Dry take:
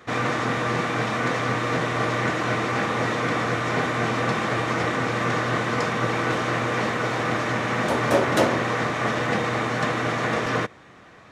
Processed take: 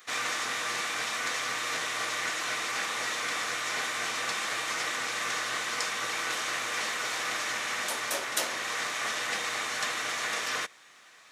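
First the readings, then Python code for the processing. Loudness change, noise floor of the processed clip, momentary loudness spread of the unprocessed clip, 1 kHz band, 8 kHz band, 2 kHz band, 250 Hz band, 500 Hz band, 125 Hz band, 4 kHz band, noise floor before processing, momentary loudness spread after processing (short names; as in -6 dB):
-6.5 dB, -55 dBFS, 3 LU, -9.5 dB, +6.0 dB, -4.5 dB, -21.5 dB, -16.0 dB, -27.5 dB, +1.0 dB, -48 dBFS, 1 LU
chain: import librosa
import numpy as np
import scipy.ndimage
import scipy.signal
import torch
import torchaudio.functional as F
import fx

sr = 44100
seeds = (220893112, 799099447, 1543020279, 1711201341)

y = np.diff(x, prepend=0.0)
y = fx.rider(y, sr, range_db=10, speed_s=0.5)
y = y * librosa.db_to_amplitude(7.0)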